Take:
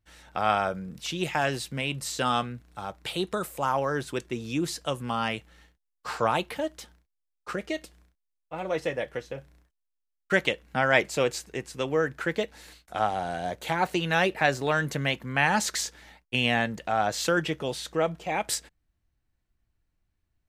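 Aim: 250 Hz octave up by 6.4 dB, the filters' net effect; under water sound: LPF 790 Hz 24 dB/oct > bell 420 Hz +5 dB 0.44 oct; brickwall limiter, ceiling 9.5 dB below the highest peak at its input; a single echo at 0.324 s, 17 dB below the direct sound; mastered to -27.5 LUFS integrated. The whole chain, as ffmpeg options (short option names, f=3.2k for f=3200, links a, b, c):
-af "equalizer=f=250:t=o:g=7.5,alimiter=limit=-15dB:level=0:latency=1,lowpass=f=790:w=0.5412,lowpass=f=790:w=1.3066,equalizer=f=420:t=o:w=0.44:g=5,aecho=1:1:324:0.141,volume=2dB"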